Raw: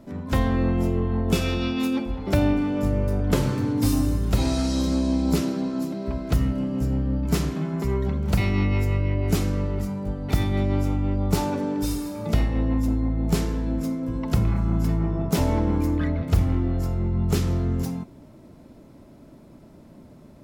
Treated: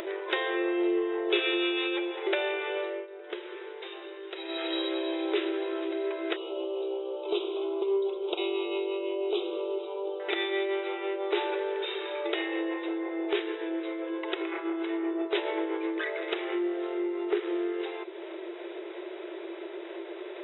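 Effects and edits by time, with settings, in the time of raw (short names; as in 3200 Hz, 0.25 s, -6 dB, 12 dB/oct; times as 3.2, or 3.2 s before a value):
2.78–4.77 dip -23 dB, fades 0.29 s
6.36–10.2 Butterworth band-stop 1800 Hz, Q 0.93
13.38–16.06 tremolo 7.6 Hz, depth 43%
16.58–17.69 median filter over 15 samples
whole clip: band shelf 810 Hz -9 dB; FFT band-pass 330–3900 Hz; upward compressor, threshold -29 dBFS; gain +4 dB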